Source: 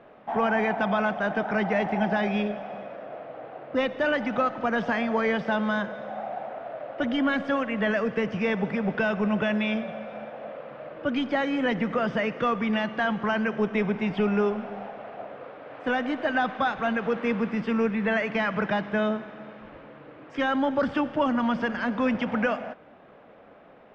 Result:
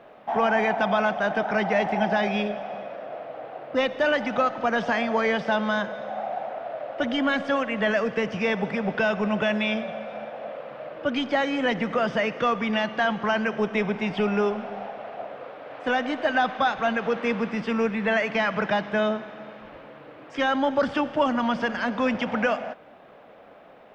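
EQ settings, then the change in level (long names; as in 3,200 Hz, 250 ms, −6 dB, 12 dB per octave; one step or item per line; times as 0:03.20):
parametric band 690 Hz +4.5 dB 1.3 octaves
high-shelf EQ 3,000 Hz +11.5 dB
−1.5 dB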